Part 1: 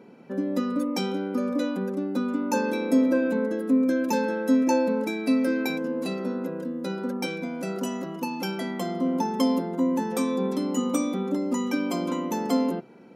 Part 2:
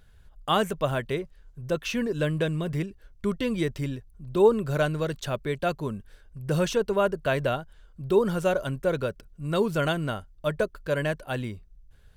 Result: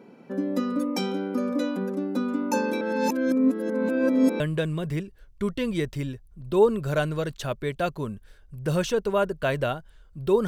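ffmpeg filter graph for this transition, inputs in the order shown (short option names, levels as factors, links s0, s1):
-filter_complex "[0:a]apad=whole_dur=10.47,atrim=end=10.47,asplit=2[s0][s1];[s0]atrim=end=2.812[s2];[s1]atrim=start=2.808:end=4.402,asetpts=PTS-STARTPTS,areverse[s3];[1:a]atrim=start=2.228:end=8.3[s4];[s2][s3]acrossfade=d=0.004:c1=hsin:c2=hsin[s5];[s5][s4]acrossfade=d=0.004:c1=hsin:c2=hsin"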